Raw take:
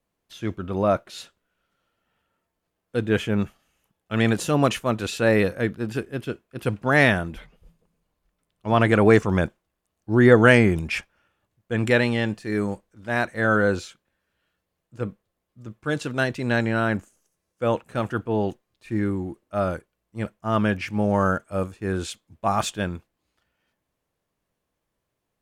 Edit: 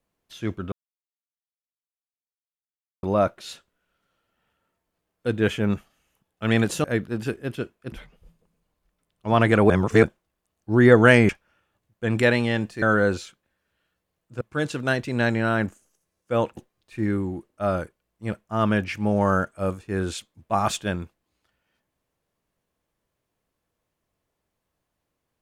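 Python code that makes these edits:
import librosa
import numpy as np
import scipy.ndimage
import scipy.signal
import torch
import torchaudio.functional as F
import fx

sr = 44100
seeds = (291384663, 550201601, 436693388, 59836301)

y = fx.edit(x, sr, fx.insert_silence(at_s=0.72, length_s=2.31),
    fx.cut(start_s=4.53, length_s=1.0),
    fx.cut(start_s=6.61, length_s=0.71),
    fx.reverse_span(start_s=9.1, length_s=0.33),
    fx.cut(start_s=10.69, length_s=0.28),
    fx.cut(start_s=12.5, length_s=0.94),
    fx.cut(start_s=15.03, length_s=0.69),
    fx.cut(start_s=17.88, length_s=0.62), tone=tone)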